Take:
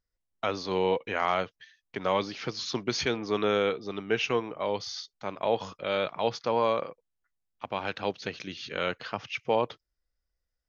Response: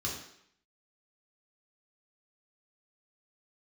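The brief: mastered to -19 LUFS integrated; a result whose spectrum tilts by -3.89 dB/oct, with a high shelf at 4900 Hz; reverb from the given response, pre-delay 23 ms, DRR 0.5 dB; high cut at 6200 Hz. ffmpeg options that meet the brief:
-filter_complex "[0:a]lowpass=6.2k,highshelf=f=4.9k:g=-6,asplit=2[a][b];[1:a]atrim=start_sample=2205,adelay=23[c];[b][c]afir=irnorm=-1:irlink=0,volume=-4.5dB[d];[a][d]amix=inputs=2:normalize=0,volume=8.5dB"

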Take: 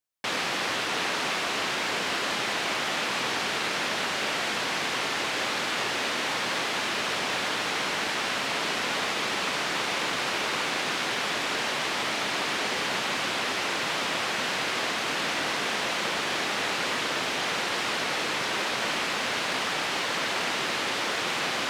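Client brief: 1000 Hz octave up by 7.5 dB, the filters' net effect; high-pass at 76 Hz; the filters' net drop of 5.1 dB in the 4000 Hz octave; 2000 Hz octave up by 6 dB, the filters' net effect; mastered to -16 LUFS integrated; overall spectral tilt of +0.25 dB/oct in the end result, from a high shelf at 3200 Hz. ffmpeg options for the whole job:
-af "highpass=76,equalizer=f=1k:t=o:g=8,equalizer=f=2k:t=o:g=9,highshelf=f=3.2k:g=-8.5,equalizer=f=4k:t=o:g=-5.5,volume=7dB"

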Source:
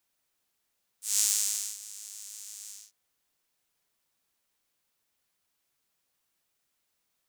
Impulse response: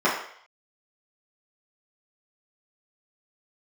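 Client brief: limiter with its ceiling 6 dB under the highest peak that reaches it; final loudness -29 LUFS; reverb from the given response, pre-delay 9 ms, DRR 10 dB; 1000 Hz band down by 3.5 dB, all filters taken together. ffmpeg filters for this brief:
-filter_complex "[0:a]equalizer=f=1k:t=o:g=-4.5,alimiter=limit=-10.5dB:level=0:latency=1,asplit=2[a][b];[1:a]atrim=start_sample=2205,adelay=9[c];[b][c]afir=irnorm=-1:irlink=0,volume=-28dB[d];[a][d]amix=inputs=2:normalize=0,volume=2.5dB"

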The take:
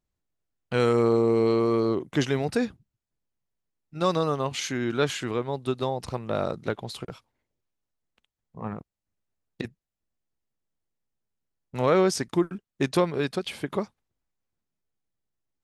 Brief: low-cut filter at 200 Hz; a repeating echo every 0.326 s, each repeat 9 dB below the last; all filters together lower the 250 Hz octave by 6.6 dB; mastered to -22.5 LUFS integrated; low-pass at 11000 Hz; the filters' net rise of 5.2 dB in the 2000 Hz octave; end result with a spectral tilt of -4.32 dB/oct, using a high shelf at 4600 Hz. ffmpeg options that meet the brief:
-af "highpass=200,lowpass=11k,equalizer=f=250:t=o:g=-8.5,equalizer=f=2k:t=o:g=8,highshelf=f=4.6k:g=-6,aecho=1:1:326|652|978|1304:0.355|0.124|0.0435|0.0152,volume=5.5dB"

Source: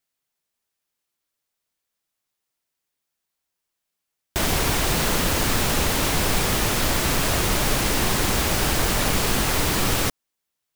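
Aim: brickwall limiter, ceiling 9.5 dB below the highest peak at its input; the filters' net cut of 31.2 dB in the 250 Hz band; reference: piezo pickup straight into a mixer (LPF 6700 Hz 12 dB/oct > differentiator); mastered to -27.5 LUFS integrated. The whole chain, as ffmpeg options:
-af "equalizer=f=250:t=o:g=-3.5,alimiter=limit=-17.5dB:level=0:latency=1,lowpass=6.7k,aderivative,volume=7.5dB"

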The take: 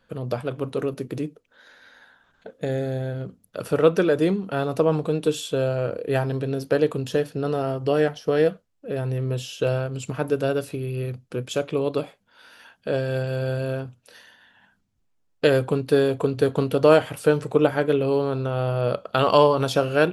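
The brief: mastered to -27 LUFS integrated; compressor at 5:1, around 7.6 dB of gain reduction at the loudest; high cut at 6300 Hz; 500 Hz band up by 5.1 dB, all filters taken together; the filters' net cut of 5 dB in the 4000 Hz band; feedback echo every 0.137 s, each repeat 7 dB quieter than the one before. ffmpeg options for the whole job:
-af "lowpass=6.3k,equalizer=f=500:t=o:g=6,equalizer=f=4k:t=o:g=-6.5,acompressor=threshold=-15dB:ratio=5,aecho=1:1:137|274|411|548|685:0.447|0.201|0.0905|0.0407|0.0183,volume=-5dB"

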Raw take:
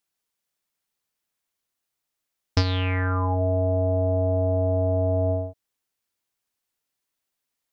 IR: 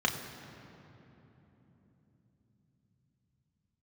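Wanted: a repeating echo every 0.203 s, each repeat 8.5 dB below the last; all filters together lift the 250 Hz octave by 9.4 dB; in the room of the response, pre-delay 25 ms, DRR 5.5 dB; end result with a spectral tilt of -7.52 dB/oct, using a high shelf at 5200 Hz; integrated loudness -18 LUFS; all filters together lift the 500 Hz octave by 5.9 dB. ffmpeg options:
-filter_complex "[0:a]equalizer=f=250:t=o:g=8.5,equalizer=f=500:t=o:g=6.5,highshelf=f=5.2k:g=5.5,aecho=1:1:203|406|609|812:0.376|0.143|0.0543|0.0206,asplit=2[a][b];[1:a]atrim=start_sample=2205,adelay=25[c];[b][c]afir=irnorm=-1:irlink=0,volume=-15.5dB[d];[a][d]amix=inputs=2:normalize=0,volume=1dB"

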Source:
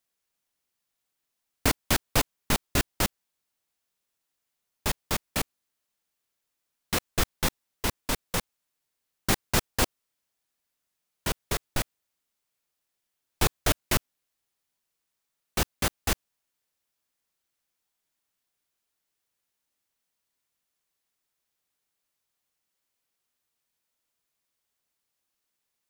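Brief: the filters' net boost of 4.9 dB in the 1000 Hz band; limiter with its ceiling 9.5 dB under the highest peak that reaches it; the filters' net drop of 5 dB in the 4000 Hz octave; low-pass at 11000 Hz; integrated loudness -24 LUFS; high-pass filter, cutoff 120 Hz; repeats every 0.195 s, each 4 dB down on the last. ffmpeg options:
-af "highpass=120,lowpass=11k,equalizer=f=1k:t=o:g=6.5,equalizer=f=4k:t=o:g=-7,alimiter=limit=-18.5dB:level=0:latency=1,aecho=1:1:195|390|585|780|975|1170|1365|1560|1755:0.631|0.398|0.25|0.158|0.0994|0.0626|0.0394|0.0249|0.0157,volume=9.5dB"

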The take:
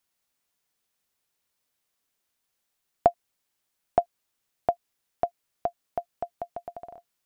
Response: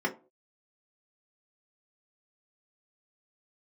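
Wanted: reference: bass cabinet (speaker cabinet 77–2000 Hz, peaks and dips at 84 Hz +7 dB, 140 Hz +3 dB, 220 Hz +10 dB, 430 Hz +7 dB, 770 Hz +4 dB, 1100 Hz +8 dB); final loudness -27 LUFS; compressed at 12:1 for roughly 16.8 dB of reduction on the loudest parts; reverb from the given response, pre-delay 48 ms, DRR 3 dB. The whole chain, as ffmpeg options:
-filter_complex "[0:a]acompressor=threshold=-33dB:ratio=12,asplit=2[a][b];[1:a]atrim=start_sample=2205,adelay=48[c];[b][c]afir=irnorm=-1:irlink=0,volume=-12dB[d];[a][d]amix=inputs=2:normalize=0,highpass=f=77:w=0.5412,highpass=f=77:w=1.3066,equalizer=f=84:t=q:w=4:g=7,equalizer=f=140:t=q:w=4:g=3,equalizer=f=220:t=q:w=4:g=10,equalizer=f=430:t=q:w=4:g=7,equalizer=f=770:t=q:w=4:g=4,equalizer=f=1.1k:t=q:w=4:g=8,lowpass=f=2k:w=0.5412,lowpass=f=2k:w=1.3066,volume=11dB"

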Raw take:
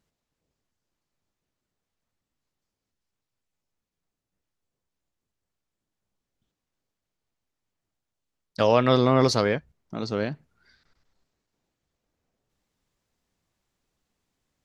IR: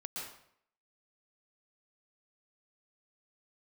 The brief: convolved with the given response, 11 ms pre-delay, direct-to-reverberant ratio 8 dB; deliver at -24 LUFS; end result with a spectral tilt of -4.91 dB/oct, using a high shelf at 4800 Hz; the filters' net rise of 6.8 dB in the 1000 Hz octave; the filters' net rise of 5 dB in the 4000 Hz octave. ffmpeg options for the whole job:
-filter_complex "[0:a]equalizer=f=1k:t=o:g=8,equalizer=f=4k:t=o:g=3,highshelf=f=4.8k:g=5.5,asplit=2[a][b];[1:a]atrim=start_sample=2205,adelay=11[c];[b][c]afir=irnorm=-1:irlink=0,volume=-8dB[d];[a][d]amix=inputs=2:normalize=0,volume=-4.5dB"

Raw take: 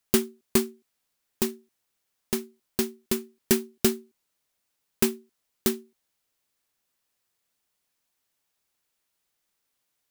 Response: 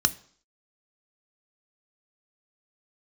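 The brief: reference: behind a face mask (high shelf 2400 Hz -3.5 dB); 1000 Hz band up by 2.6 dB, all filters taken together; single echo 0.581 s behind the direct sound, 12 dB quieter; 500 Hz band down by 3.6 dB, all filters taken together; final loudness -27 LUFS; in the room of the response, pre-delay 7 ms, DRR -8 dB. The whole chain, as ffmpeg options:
-filter_complex "[0:a]equalizer=f=500:t=o:g=-6.5,equalizer=f=1k:t=o:g=5.5,aecho=1:1:581:0.251,asplit=2[a][b];[1:a]atrim=start_sample=2205,adelay=7[c];[b][c]afir=irnorm=-1:irlink=0,volume=-2.5dB[d];[a][d]amix=inputs=2:normalize=0,highshelf=f=2.4k:g=-3.5,volume=-5dB"

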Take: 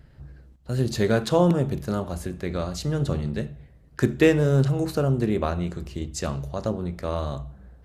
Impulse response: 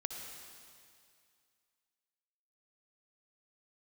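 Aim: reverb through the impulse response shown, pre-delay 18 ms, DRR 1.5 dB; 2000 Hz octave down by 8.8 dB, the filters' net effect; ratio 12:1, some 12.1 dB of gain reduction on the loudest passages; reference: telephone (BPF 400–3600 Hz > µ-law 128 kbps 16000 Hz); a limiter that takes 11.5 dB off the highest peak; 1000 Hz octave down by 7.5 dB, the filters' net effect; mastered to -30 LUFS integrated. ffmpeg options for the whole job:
-filter_complex "[0:a]equalizer=f=1k:t=o:g=-8.5,equalizer=f=2k:t=o:g=-8,acompressor=threshold=-27dB:ratio=12,alimiter=level_in=3.5dB:limit=-24dB:level=0:latency=1,volume=-3.5dB,asplit=2[a][b];[1:a]atrim=start_sample=2205,adelay=18[c];[b][c]afir=irnorm=-1:irlink=0,volume=-1.5dB[d];[a][d]amix=inputs=2:normalize=0,highpass=400,lowpass=3.6k,volume=12.5dB" -ar 16000 -c:a pcm_mulaw

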